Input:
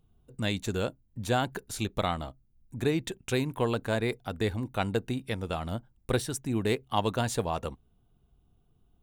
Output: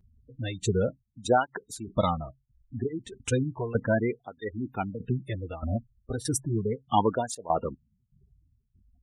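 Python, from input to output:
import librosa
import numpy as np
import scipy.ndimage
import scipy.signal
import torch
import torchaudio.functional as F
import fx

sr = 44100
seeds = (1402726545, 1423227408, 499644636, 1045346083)

y = fx.tremolo_shape(x, sr, shape='saw_down', hz=1.6, depth_pct=85)
y = fx.spec_gate(y, sr, threshold_db=-15, keep='strong')
y = fx.high_shelf(y, sr, hz=5700.0, db=4.5)
y = fx.flanger_cancel(y, sr, hz=0.34, depth_ms=6.9)
y = F.gain(torch.from_numpy(y), 9.0).numpy()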